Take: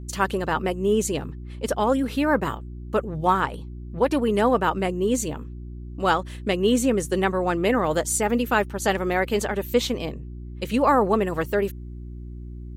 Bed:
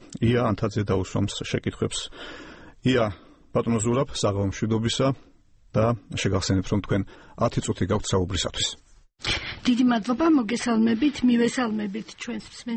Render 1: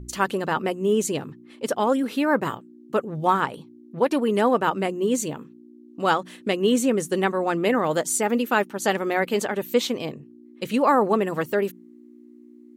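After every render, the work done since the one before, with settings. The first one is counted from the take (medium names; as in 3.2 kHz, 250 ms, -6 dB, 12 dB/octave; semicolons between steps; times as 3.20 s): de-hum 60 Hz, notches 3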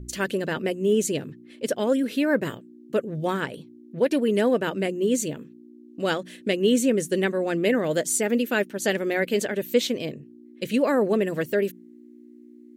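high-order bell 1 kHz -11.5 dB 1 oct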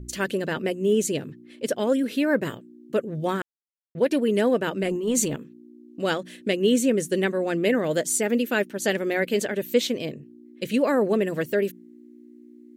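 3.42–3.95 s: mute; 4.83–5.36 s: transient shaper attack -12 dB, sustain +8 dB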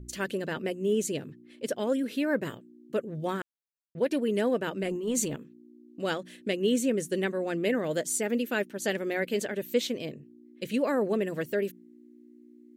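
trim -5.5 dB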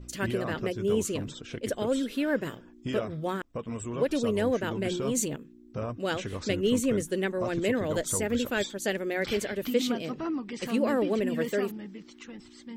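add bed -12.5 dB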